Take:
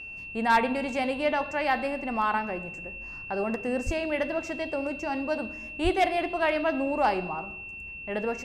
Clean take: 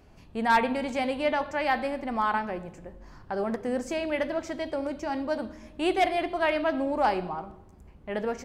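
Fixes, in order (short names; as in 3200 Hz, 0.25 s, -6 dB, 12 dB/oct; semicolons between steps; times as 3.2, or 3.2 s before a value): notch 2700 Hz, Q 30; de-plosive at 3.85/5.83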